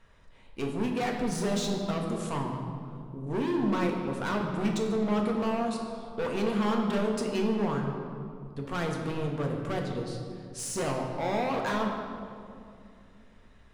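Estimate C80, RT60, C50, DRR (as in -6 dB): 5.0 dB, 2.4 s, 4.0 dB, 0.5 dB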